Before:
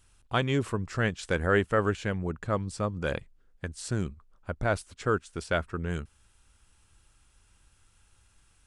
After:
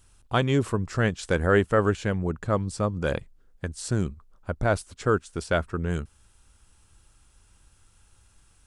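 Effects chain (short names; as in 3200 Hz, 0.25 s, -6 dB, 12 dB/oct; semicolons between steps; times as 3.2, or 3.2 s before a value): bell 2300 Hz -4 dB 1.6 oct; gain +4.5 dB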